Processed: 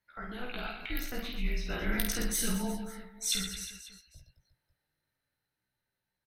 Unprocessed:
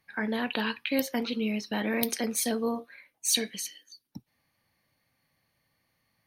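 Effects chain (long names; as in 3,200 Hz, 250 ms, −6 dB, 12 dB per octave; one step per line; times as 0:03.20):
source passing by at 0:02.27, 8 m/s, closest 7.7 metres
chorus effect 0.33 Hz, delay 15.5 ms, depth 3 ms
on a send: reverse bouncing-ball delay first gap 50 ms, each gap 1.4×, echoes 5
on the sum: frequency shifter −250 Hz
buffer that repeats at 0:00.82, samples 512, times 2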